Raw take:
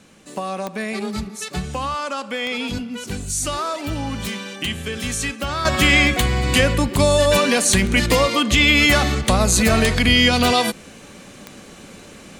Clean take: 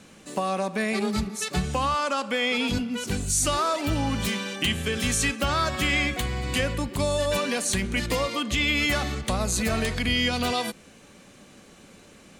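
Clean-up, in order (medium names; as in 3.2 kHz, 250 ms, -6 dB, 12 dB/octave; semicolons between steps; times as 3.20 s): de-click; gain correction -9.5 dB, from 5.65 s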